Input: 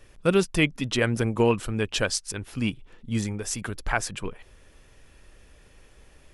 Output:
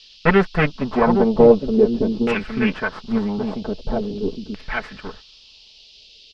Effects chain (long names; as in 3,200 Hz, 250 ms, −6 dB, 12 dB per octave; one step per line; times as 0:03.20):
lower of the sound and its delayed copy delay 4.6 ms
single-tap delay 812 ms −6.5 dB
auto-filter low-pass saw down 0.44 Hz 280–2,600 Hz
noise gate −45 dBFS, range −17 dB
noise in a band 2,700–5,200 Hz −54 dBFS
level +6 dB